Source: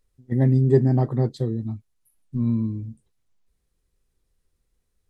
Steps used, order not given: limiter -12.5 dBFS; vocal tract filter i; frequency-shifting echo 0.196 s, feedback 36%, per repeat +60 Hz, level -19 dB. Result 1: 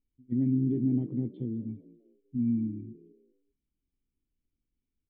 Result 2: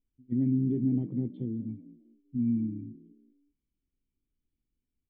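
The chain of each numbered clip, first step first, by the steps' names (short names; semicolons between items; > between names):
limiter > vocal tract filter > frequency-shifting echo; frequency-shifting echo > limiter > vocal tract filter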